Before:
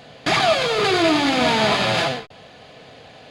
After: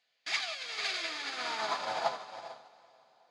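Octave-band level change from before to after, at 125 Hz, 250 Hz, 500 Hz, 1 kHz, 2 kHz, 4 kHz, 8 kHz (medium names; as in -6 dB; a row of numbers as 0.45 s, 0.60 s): -34.0 dB, -31.5 dB, -20.5 dB, -15.0 dB, -14.5 dB, -14.5 dB, -12.5 dB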